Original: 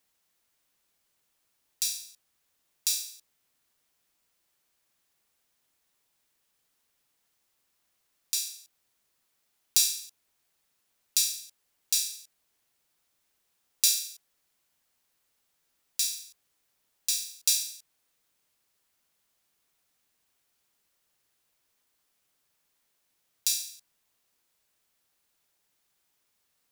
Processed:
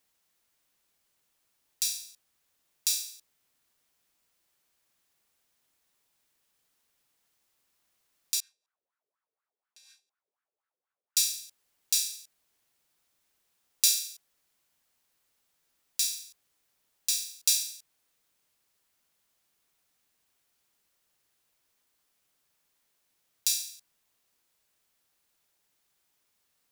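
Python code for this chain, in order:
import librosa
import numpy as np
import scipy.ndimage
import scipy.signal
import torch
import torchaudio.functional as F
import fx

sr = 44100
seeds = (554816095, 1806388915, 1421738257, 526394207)

y = fx.wah_lfo(x, sr, hz=4.1, low_hz=420.0, high_hz=1500.0, q=4.9, at=(8.4, 11.17))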